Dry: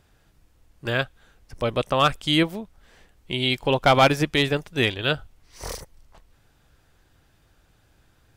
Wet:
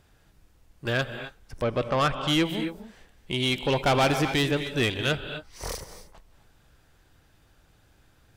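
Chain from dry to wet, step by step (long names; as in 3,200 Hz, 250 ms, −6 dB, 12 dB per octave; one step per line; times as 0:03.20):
0:01.63–0:02.27: low-pass filter 2,300 Hz → 4,400 Hz 12 dB per octave
reverb whose tail is shaped and stops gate 290 ms rising, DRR 11.5 dB
soft clipping −17.5 dBFS, distortion −10 dB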